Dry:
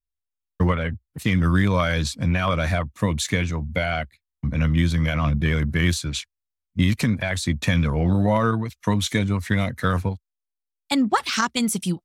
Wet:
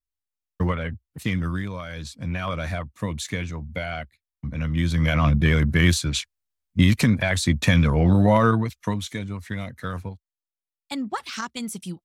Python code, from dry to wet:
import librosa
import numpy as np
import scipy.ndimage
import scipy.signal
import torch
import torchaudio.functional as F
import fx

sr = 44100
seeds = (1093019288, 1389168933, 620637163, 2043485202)

y = fx.gain(x, sr, db=fx.line((1.28, -3.5), (1.82, -14.0), (2.38, -6.0), (4.66, -6.0), (5.13, 2.5), (8.66, 2.5), (9.08, -9.0)))